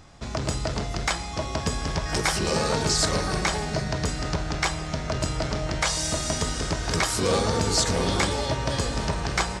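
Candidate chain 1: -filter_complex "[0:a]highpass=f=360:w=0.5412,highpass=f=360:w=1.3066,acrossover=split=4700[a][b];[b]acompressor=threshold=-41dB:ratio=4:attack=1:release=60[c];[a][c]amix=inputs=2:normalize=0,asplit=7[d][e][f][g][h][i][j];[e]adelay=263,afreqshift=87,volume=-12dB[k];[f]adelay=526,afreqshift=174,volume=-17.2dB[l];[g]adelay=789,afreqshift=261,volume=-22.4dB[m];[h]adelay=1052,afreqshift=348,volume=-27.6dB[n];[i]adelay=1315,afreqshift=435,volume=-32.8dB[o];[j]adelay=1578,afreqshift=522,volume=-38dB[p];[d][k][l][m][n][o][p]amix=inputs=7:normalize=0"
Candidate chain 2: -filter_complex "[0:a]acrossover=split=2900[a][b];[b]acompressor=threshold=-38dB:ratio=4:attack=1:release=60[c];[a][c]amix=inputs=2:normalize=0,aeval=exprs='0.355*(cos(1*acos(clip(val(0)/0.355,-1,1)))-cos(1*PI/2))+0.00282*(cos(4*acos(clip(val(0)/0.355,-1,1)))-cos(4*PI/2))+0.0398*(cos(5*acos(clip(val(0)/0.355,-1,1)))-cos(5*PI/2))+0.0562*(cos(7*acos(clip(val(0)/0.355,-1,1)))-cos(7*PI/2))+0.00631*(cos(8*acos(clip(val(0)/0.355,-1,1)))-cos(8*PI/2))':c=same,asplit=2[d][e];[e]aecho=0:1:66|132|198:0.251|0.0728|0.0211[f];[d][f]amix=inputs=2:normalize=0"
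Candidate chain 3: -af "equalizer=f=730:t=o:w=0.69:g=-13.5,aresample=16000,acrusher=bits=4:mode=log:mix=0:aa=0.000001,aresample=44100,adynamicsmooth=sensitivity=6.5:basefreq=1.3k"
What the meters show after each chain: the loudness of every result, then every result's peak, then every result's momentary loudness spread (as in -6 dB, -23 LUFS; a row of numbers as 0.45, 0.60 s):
-28.5, -28.5, -28.0 LUFS; -10.0, -10.0, -10.5 dBFS; 7, 7, 7 LU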